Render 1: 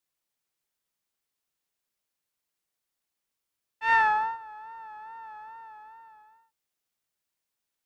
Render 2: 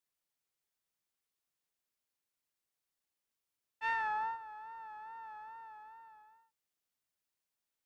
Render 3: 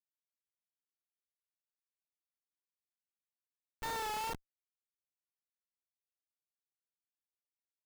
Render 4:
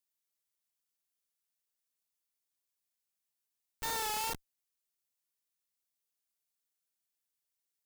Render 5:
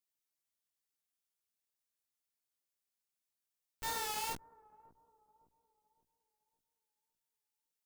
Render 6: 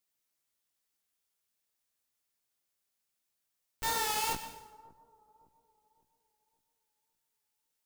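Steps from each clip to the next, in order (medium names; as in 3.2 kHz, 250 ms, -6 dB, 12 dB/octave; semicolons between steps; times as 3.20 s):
compression 12:1, threshold -26 dBFS, peak gain reduction 9.5 dB; trim -5 dB
Schmitt trigger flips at -38 dBFS; trim +8.5 dB
treble shelf 3.7 kHz +10.5 dB
chorus 2.2 Hz, delay 15.5 ms, depth 2.2 ms; bucket-brigade echo 560 ms, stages 4096, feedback 40%, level -21.5 dB
plate-style reverb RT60 0.86 s, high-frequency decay 0.9×, pre-delay 90 ms, DRR 10.5 dB; trim +6 dB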